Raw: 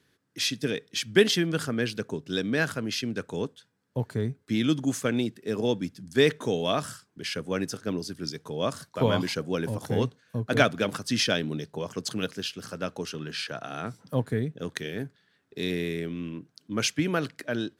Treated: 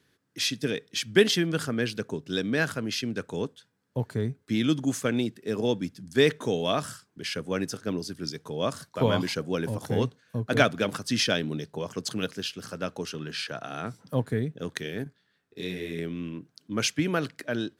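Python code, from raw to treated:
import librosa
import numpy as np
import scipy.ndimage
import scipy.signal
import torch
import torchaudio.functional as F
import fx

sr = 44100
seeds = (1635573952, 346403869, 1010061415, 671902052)

y = fx.detune_double(x, sr, cents=31, at=(15.04, 15.99))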